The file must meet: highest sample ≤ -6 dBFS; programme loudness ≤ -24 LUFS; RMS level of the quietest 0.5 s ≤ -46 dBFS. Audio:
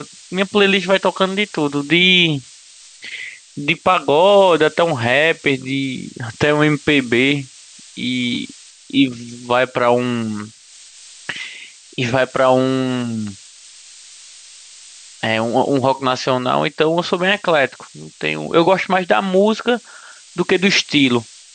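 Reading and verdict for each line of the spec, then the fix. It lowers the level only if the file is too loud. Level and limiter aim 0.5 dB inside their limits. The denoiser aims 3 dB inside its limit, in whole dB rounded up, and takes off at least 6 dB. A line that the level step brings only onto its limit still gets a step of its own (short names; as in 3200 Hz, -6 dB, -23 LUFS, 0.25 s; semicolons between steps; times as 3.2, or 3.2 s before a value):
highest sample -2.0 dBFS: fail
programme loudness -16.5 LUFS: fail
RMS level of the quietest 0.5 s -43 dBFS: fail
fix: gain -8 dB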